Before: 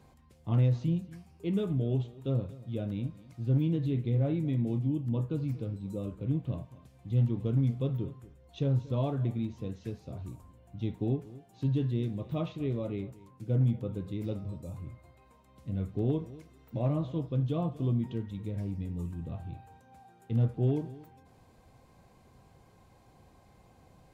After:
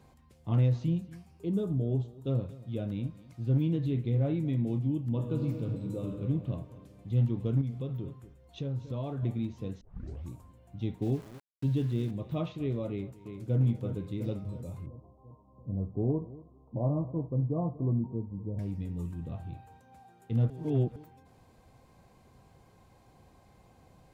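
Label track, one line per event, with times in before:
1.450000	2.270000	parametric band 2,300 Hz −15 dB 1.2 octaves
5.110000	6.150000	thrown reverb, RT60 2.7 s, DRR 3.5 dB
7.610000	9.230000	downward compressor 2.5 to 1, threshold −33 dBFS
9.810000	9.810000	tape start 0.49 s
11.020000	12.110000	centre clipping without the shift under −46.5 dBFS
12.900000	13.590000	delay throw 350 ms, feedback 60%, level −7 dB
14.860000	18.590000	Butterworth low-pass 1,100 Hz 72 dB per octave
20.500000	20.960000	reverse

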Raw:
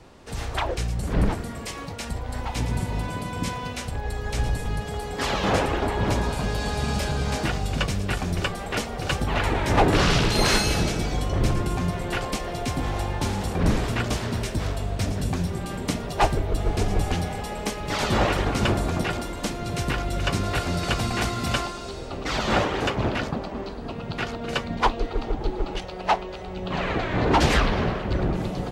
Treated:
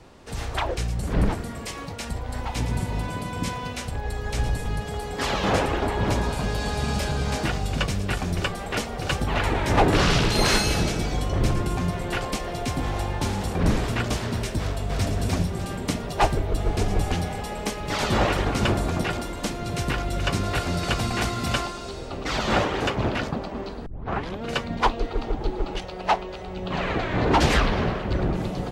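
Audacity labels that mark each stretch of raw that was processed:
14.590000	15.130000	delay throw 300 ms, feedback 30%, level −1.5 dB
23.860000	23.860000	tape start 0.57 s

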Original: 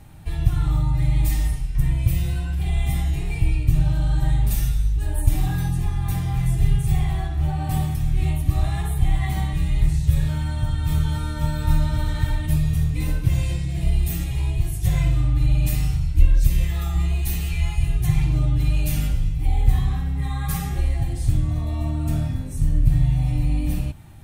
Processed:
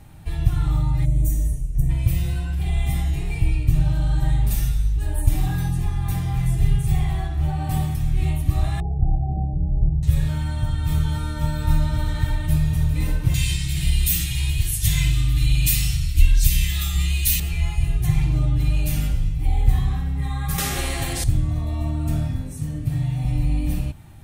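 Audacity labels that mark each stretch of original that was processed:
1.050000	1.900000	gain on a spectral selection 720–5,700 Hz −16 dB
8.800000	10.030000	Chebyshev low-pass filter 820 Hz, order 10
12.000000	12.730000	delay throw 400 ms, feedback 85%, level −11.5 dB
13.340000	17.400000	drawn EQ curve 110 Hz 0 dB, 340 Hz −6 dB, 480 Hz −17 dB, 3,100 Hz +12 dB
20.580000	21.240000	every bin compressed towards the loudest bin 2 to 1
22.530000	23.250000	high-pass filter 120 Hz

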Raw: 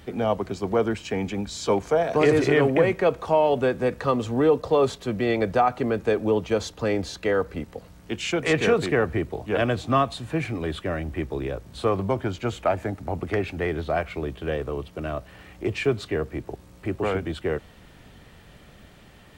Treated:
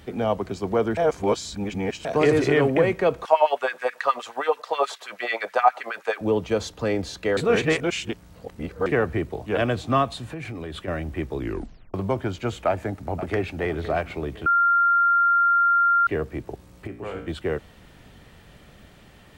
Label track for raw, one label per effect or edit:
0.970000	2.050000	reverse
3.250000	6.210000	auto-filter high-pass sine 9.4 Hz 660–2,100 Hz
7.370000	8.860000	reverse
10.250000	10.880000	downward compressor, threshold −30 dBFS
11.380000	11.380000	tape stop 0.56 s
12.670000	13.600000	delay throw 510 ms, feedback 35%, level −11.5 dB
14.460000	16.070000	beep over 1,390 Hz −15.5 dBFS
16.870000	17.280000	tuned comb filter 58 Hz, decay 0.62 s, mix 80%

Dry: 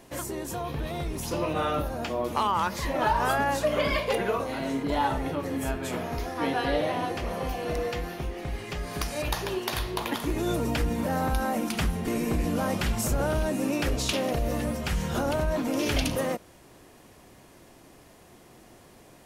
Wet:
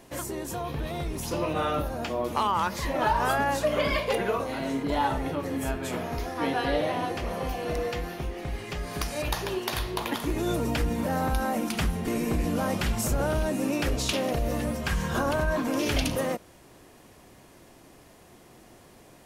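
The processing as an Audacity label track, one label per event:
14.850000	15.790000	hollow resonant body resonances 1,100/1,600 Hz, height 13 dB

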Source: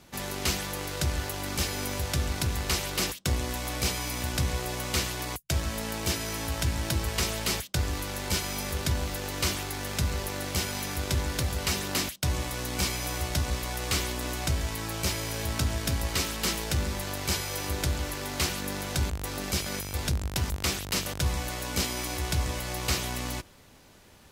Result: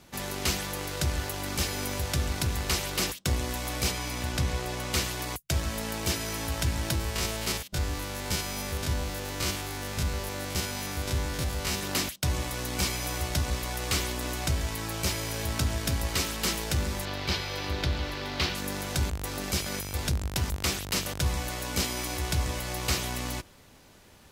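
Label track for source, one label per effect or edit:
3.910000	4.930000	high-shelf EQ 8,900 Hz −7.5 dB
6.950000	11.830000	spectrum averaged block by block every 50 ms
17.050000	18.550000	high shelf with overshoot 5,900 Hz −12 dB, Q 1.5

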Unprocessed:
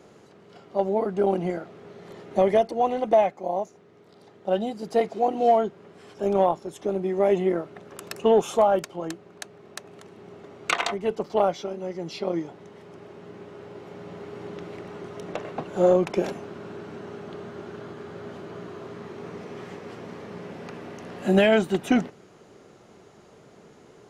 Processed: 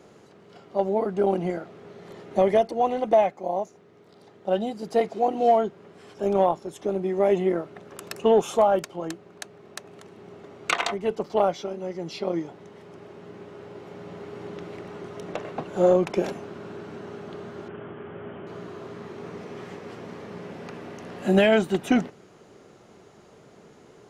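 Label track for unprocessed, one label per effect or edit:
17.680000	18.470000	Butterworth low-pass 3,300 Hz 96 dB per octave

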